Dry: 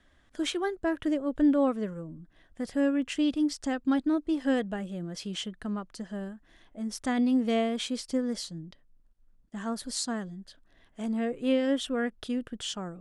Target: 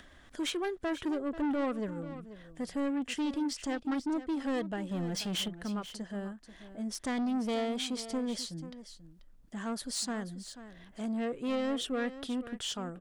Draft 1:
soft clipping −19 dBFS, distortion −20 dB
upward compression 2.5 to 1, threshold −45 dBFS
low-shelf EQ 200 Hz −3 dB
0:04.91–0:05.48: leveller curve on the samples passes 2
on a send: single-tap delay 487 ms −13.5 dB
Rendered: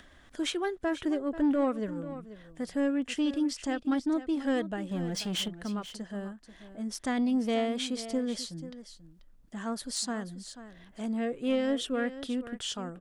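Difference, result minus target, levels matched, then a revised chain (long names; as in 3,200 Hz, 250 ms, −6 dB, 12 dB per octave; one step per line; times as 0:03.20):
soft clipping: distortion −10 dB
soft clipping −27.5 dBFS, distortion −10 dB
upward compression 2.5 to 1, threshold −45 dBFS
low-shelf EQ 200 Hz −3 dB
0:04.91–0:05.48: leveller curve on the samples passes 2
on a send: single-tap delay 487 ms −13.5 dB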